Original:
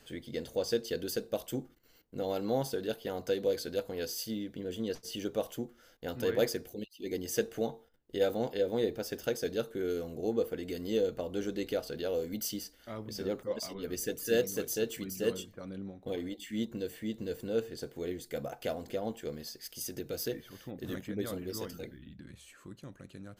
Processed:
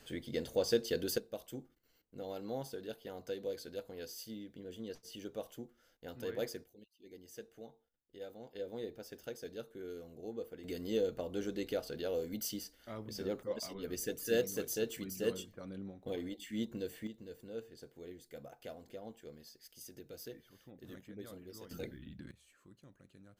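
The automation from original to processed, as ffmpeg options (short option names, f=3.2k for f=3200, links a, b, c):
-af "asetnsamples=n=441:p=0,asendcmd='1.18 volume volume -9.5dB;6.64 volume volume -18.5dB;8.55 volume volume -12dB;10.64 volume volume -3.5dB;17.07 volume volume -12.5dB;21.71 volume volume 0dB;22.31 volume volume -12dB',volume=0dB"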